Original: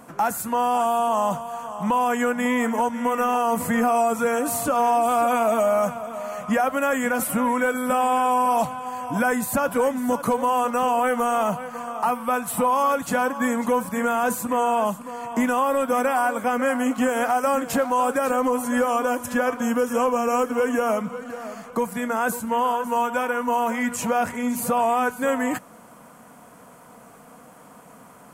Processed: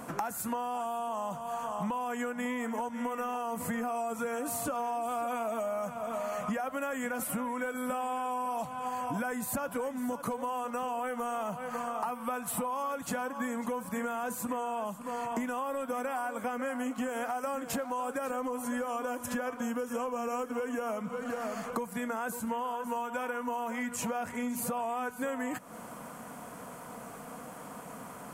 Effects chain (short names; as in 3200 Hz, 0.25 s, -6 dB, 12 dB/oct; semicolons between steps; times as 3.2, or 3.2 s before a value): compressor 10:1, threshold -34 dBFS, peak gain reduction 17 dB; gain +2.5 dB